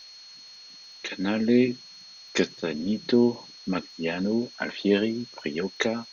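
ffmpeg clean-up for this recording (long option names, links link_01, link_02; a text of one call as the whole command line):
ffmpeg -i in.wav -af "adeclick=threshold=4,bandreject=frequency=4300:width=30,afftdn=noise_reduction=22:noise_floor=-47" out.wav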